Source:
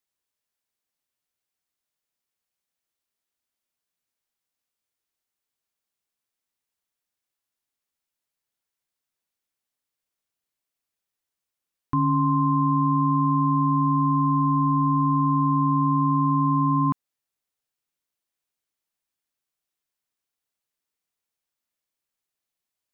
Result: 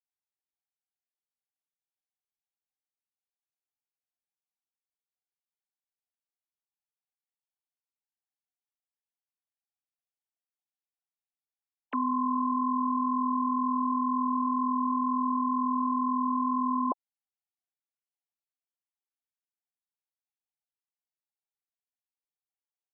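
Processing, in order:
three sine waves on the formant tracks
flat-topped bell 520 Hz +8.5 dB
level −8.5 dB

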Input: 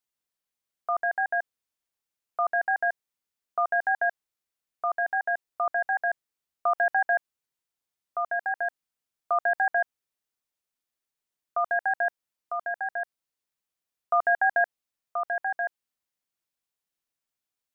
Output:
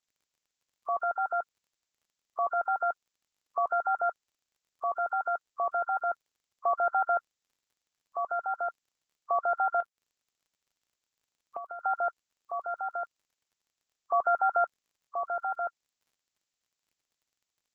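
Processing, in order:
hearing-aid frequency compression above 1,000 Hz 1.5 to 1
0:09.80–0:11.81: downward compressor 6 to 1, threshold −36 dBFS, peak gain reduction 13 dB
surface crackle 45 per second −61 dBFS
harmonic and percussive parts rebalanced harmonic −4 dB
level +1.5 dB

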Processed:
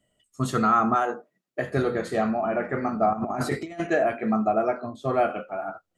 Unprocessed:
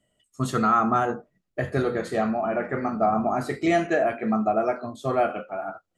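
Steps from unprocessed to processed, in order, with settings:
0:00.94–0:01.71: high-pass filter 430 Hz → 170 Hz 12 dB per octave
0:03.13–0:03.80: compressor whose output falls as the input rises −28 dBFS, ratio −0.5
0:04.62–0:05.15: high-shelf EQ 5,700 Hz −11.5 dB

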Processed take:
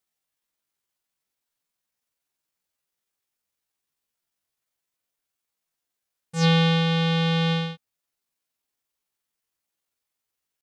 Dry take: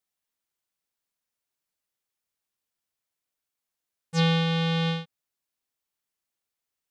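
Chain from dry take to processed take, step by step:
tempo change 0.65×
level +3 dB

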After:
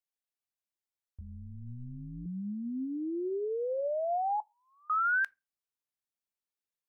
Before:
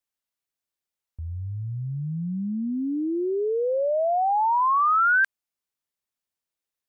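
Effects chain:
0:01.21–0:02.26: amplitude modulation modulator 120 Hz, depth 90%
0:04.40–0:04.90: Butterworth high-pass 1,900 Hz 48 dB per octave
on a send: convolution reverb RT60 0.25 s, pre-delay 3 ms, DRR 20.5 dB
on the sum: level −8.5 dB

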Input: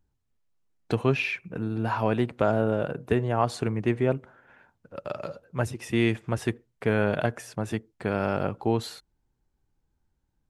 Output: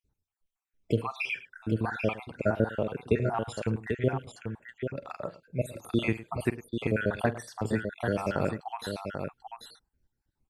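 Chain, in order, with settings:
time-frequency cells dropped at random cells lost 63%
0:07.71–0:08.63: high-shelf EQ 4,300 Hz +9.5 dB
multi-tap delay 46/107/790 ms −15/−17.5/−6.5 dB

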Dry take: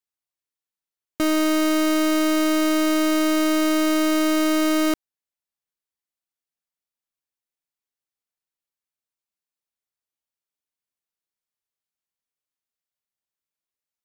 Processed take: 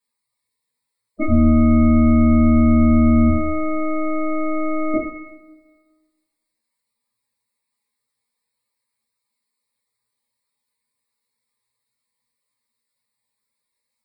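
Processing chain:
0:01.28–0:03.30: sub-octave generator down 2 octaves, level +2 dB
EQ curve with evenly spaced ripples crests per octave 0.95, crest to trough 7 dB
gate on every frequency bin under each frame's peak −10 dB strong
coupled-rooms reverb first 0.51 s, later 1.5 s, DRR −8.5 dB
level +4 dB

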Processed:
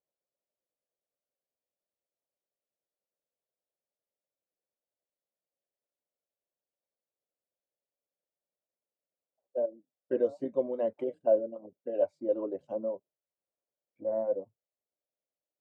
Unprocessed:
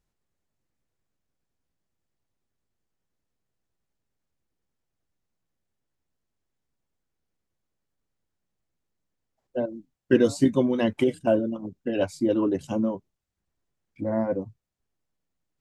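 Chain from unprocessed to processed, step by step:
resonant band-pass 570 Hz, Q 4.2

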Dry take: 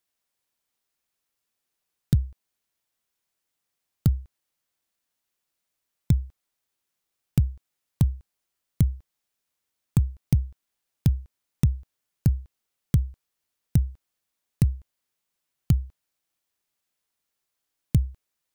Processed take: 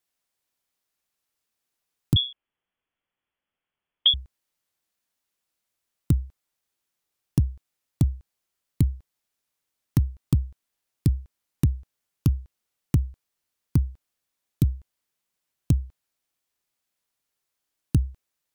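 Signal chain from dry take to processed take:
phase distortion by the signal itself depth 0.66 ms
pitch vibrato 6.1 Hz 30 cents
0:02.16–0:04.14: voice inversion scrambler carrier 3,400 Hz

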